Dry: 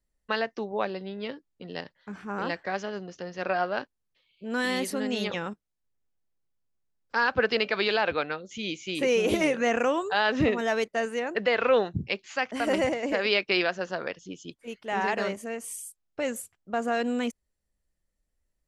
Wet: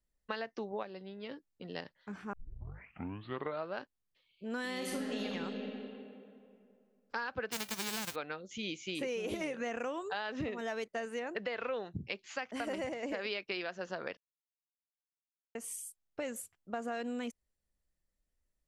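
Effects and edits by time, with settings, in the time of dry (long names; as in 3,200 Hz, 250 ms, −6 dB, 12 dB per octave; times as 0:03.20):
0:00.83–0:01.31: clip gain −5.5 dB
0:02.33: tape start 1.44 s
0:04.74–0:05.25: thrown reverb, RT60 2.5 s, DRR −2.5 dB
0:07.51–0:08.14: spectral envelope flattened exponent 0.1
0:14.17–0:15.55: silence
whole clip: downward compressor, threshold −30 dBFS; level −4.5 dB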